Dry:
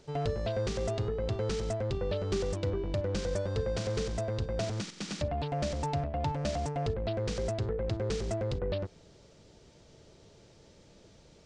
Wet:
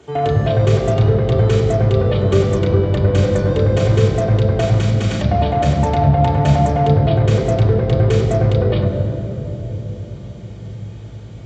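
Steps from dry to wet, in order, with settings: band-stop 2.7 kHz, Q 16; reverberation RT60 3.6 s, pre-delay 3 ms, DRR -3 dB; trim +3 dB

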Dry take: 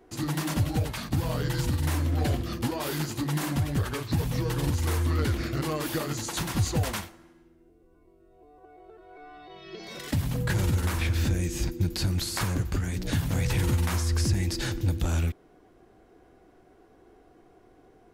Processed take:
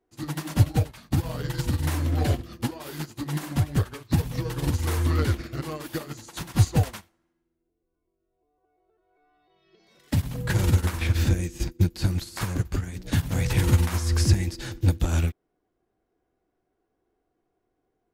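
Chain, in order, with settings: upward expansion 2.5:1, over -39 dBFS; trim +8.5 dB

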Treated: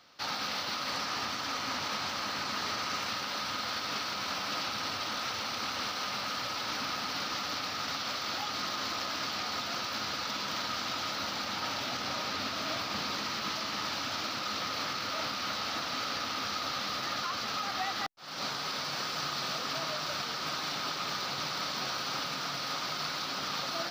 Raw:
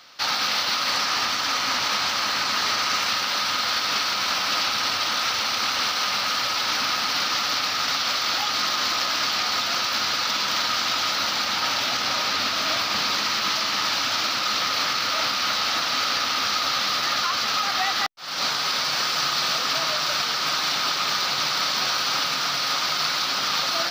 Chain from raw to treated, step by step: tilt shelf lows +5 dB, about 720 Hz; trim -7.5 dB

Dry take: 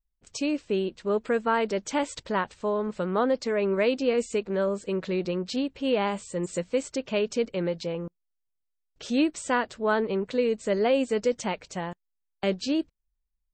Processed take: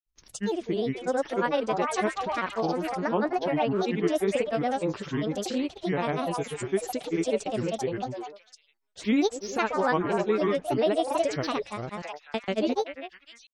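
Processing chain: repeats whose band climbs or falls 255 ms, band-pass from 720 Hz, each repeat 1.4 oct, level -1.5 dB; granulator, grains 20 per s, pitch spread up and down by 7 st

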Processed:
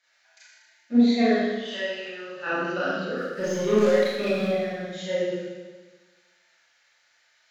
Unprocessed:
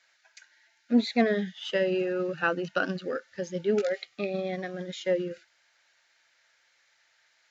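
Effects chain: 1.34–2.47 s: high-pass 1.3 kHz 6 dB/octave; 3.17–4.48 s: waveshaping leveller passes 2; Schroeder reverb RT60 1.3 s, combs from 26 ms, DRR -9.5 dB; trim -7 dB

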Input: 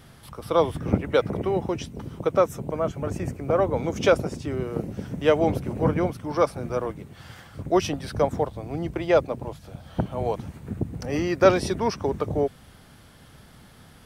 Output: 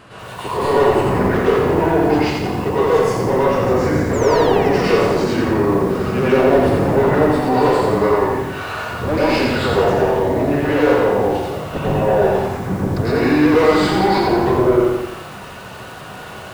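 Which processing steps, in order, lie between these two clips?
overdrive pedal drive 30 dB, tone 1.5 kHz, clips at -3 dBFS; plate-style reverb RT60 0.54 s, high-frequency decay 0.9×, pre-delay 80 ms, DRR -9.5 dB; tape speed -15%; in parallel at +2 dB: peak limiter -3 dBFS, peak gain reduction 13 dB; on the sum: painted sound fall, 4.13–5.24 s, 490–7700 Hz -20 dBFS; bit-crushed delay 86 ms, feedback 55%, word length 4-bit, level -4 dB; trim -16 dB

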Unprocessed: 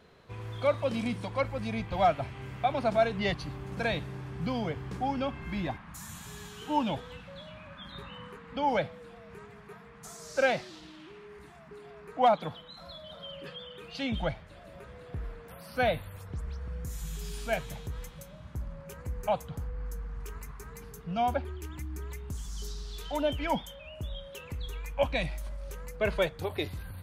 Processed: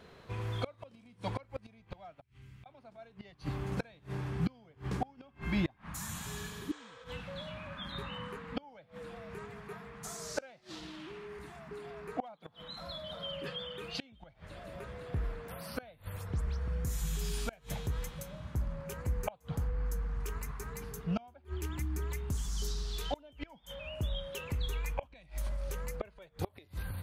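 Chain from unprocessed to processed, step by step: inverted gate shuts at -24 dBFS, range -30 dB; 2.21–2.66 s: amplifier tone stack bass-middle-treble 6-0-2; 6.44–7.02 s: spectral replace 420–9100 Hz both; trim +3 dB

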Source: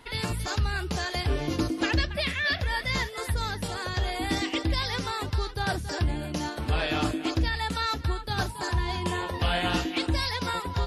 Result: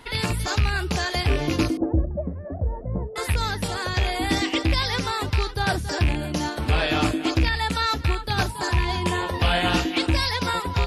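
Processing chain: rattle on loud lows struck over -26 dBFS, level -22 dBFS; 1.77–3.16 s: inverse Chebyshev low-pass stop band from 3.9 kHz, stop band 80 dB; trim +5 dB

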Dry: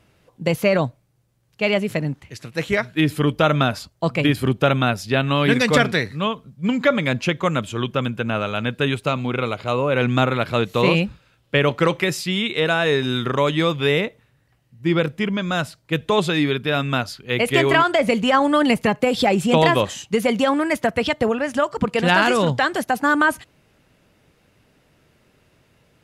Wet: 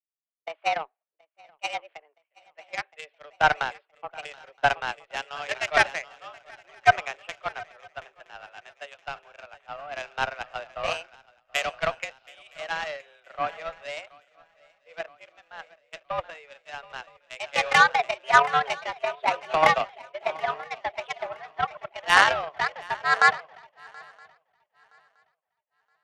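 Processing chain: mistuned SSB +150 Hz 410–2800 Hz; Chebyshev shaper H 5 -35 dB, 7 -19 dB, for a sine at -2.5 dBFS; shuffle delay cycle 970 ms, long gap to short 3:1, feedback 47%, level -14 dB; three bands expanded up and down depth 100%; trim -6 dB

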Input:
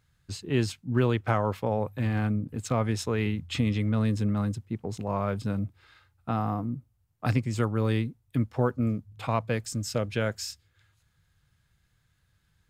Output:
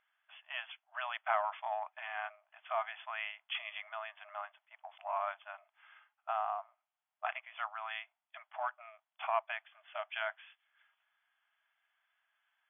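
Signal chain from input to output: in parallel at -10 dB: saturation -23 dBFS, distortion -12 dB; on the sum: brick-wall FIR band-pass 610–3500 Hz; trim -4 dB

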